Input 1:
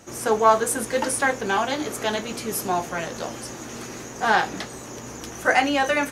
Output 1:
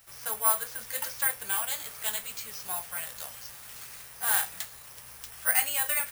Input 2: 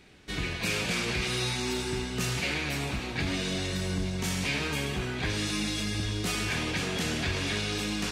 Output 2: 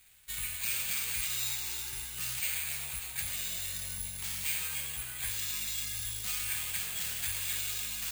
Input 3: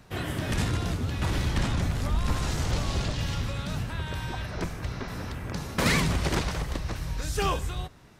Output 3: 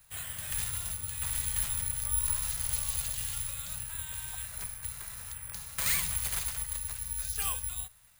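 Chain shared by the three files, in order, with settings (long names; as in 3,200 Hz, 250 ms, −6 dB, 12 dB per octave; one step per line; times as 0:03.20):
guitar amp tone stack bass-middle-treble 10-0-10
bad sample-rate conversion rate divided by 4×, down filtered, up zero stuff
level −4 dB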